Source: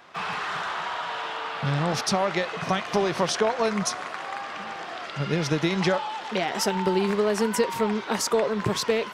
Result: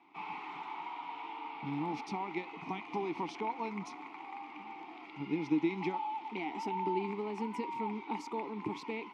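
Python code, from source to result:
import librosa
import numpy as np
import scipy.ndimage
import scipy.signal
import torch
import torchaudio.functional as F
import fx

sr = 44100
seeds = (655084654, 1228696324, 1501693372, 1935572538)

y = fx.vowel_filter(x, sr, vowel='u')
y = y * 10.0 ** (2.0 / 20.0)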